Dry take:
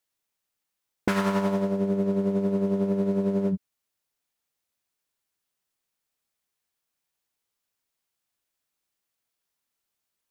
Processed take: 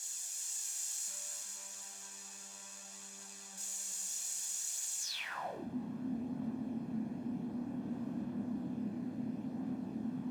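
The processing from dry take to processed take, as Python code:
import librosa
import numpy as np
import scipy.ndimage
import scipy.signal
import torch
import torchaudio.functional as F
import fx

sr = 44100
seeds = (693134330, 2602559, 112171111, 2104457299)

y = np.sign(x) * np.sqrt(np.mean(np.square(x)))
y = scipy.signal.sosfilt(scipy.signal.butter(2, 98.0, 'highpass', fs=sr, output='sos'), y)
y = fx.tilt_shelf(y, sr, db=7.0, hz=920.0)
y = y + 0.48 * np.pad(y, (int(1.2 * sr / 1000.0), 0))[:len(y)]
y = y + 10.0 ** (-5.0 / 20.0) * np.pad(y, (int(348 * sr / 1000.0), 0))[:len(y)]
y = fx.chorus_voices(y, sr, voices=2, hz=0.31, base_ms=28, depth_ms=1.3, mix_pct=50)
y = fx.echo_feedback(y, sr, ms=486, feedback_pct=39, wet_db=-6.0)
y = fx.filter_sweep_bandpass(y, sr, from_hz=7100.0, to_hz=240.0, start_s=5.01, end_s=5.67, q=5.9)
y = F.gain(torch.from_numpy(y), 11.0).numpy()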